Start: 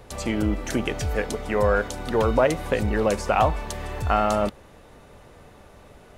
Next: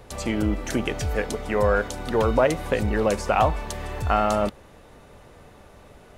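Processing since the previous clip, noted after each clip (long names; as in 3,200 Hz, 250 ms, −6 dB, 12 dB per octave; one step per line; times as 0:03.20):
no processing that can be heard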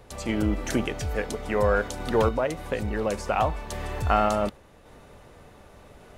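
sample-and-hold tremolo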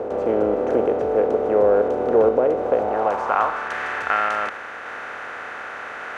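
compressor on every frequency bin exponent 0.4
band-pass filter sweep 470 Hz → 1,700 Hz, 0:02.57–0:03.77
level +6 dB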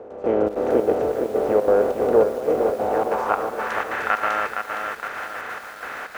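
gate pattern "...xxx.xxx.xxx" 188 BPM −12 dB
feedback echo at a low word length 464 ms, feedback 55%, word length 7 bits, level −6 dB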